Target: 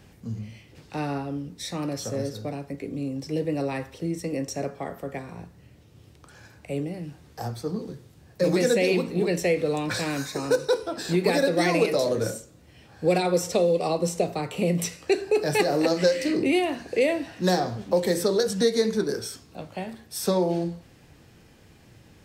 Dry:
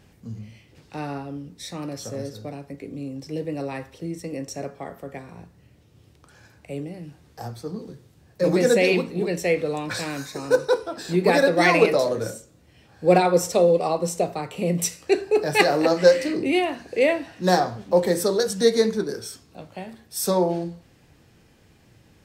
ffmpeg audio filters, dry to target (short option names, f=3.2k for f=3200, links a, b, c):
-filter_complex "[0:a]acrossover=split=600|1900|4400[a][b][c][d];[a]acompressor=threshold=-23dB:ratio=4[e];[b]acompressor=threshold=-36dB:ratio=4[f];[c]acompressor=threshold=-36dB:ratio=4[g];[d]acompressor=threshold=-37dB:ratio=4[h];[e][f][g][h]amix=inputs=4:normalize=0,volume=2.5dB"